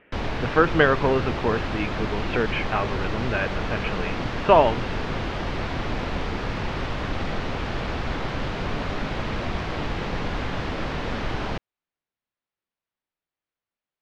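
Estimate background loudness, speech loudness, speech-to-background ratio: -29.5 LUFS, -24.0 LUFS, 5.5 dB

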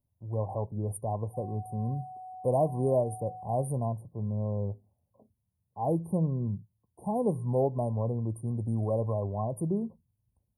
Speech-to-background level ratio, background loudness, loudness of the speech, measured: 13.5 dB, -45.0 LUFS, -31.5 LUFS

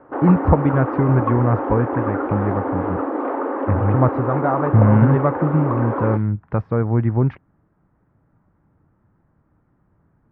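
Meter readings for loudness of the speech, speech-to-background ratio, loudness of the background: -19.5 LUFS, 4.5 dB, -24.0 LUFS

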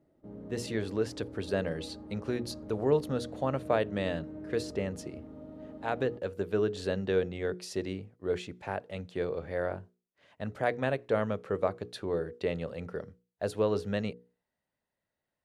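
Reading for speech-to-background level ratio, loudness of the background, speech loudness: 12.0 dB, -45.5 LUFS, -33.5 LUFS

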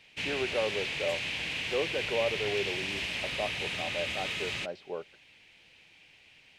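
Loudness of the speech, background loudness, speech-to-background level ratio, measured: -36.0 LUFS, -32.5 LUFS, -3.5 dB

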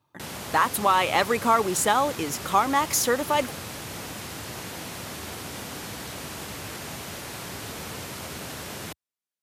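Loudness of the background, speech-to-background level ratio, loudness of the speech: -35.5 LUFS, 12.5 dB, -23.0 LUFS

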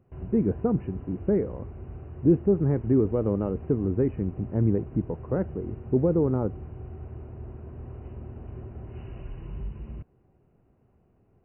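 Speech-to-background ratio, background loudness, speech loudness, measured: 14.5 dB, -41.0 LUFS, -26.5 LUFS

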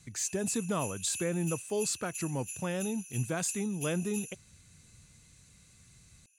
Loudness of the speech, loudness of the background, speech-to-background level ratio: -33.5 LUFS, -41.5 LUFS, 8.0 dB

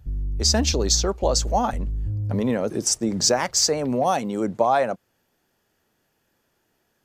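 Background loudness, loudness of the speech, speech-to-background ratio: -29.5 LUFS, -22.0 LUFS, 7.5 dB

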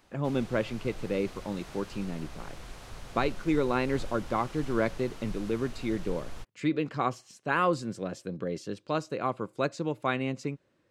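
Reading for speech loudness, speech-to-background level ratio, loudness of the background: -31.5 LUFS, 15.0 dB, -46.5 LUFS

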